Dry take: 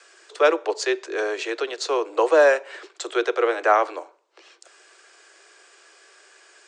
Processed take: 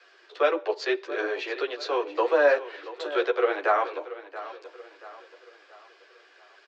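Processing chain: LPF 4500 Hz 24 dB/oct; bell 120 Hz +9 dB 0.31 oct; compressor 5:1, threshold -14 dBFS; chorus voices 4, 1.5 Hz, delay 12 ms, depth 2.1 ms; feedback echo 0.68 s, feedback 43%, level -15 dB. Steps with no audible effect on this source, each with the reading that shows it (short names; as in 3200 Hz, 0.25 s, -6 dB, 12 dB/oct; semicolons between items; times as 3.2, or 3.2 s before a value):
bell 120 Hz: input band starts at 270 Hz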